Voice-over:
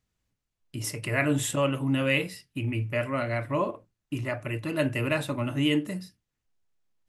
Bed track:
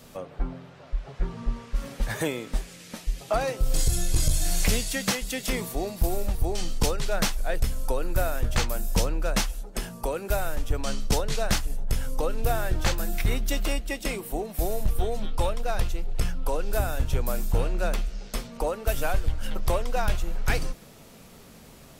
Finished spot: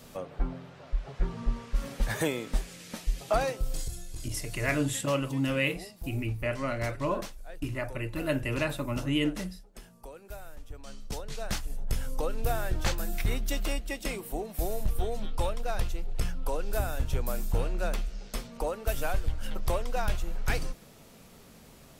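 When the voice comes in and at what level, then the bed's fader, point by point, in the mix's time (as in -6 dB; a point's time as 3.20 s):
3.50 s, -3.0 dB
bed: 3.42 s -1 dB
4.05 s -17 dB
10.80 s -17 dB
11.86 s -4 dB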